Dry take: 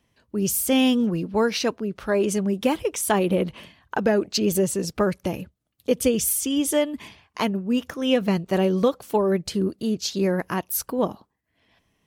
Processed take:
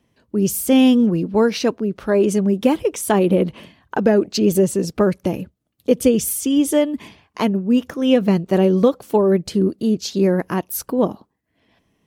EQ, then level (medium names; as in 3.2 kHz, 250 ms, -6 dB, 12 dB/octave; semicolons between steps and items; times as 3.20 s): peaking EQ 280 Hz +7 dB 2.6 oct; 0.0 dB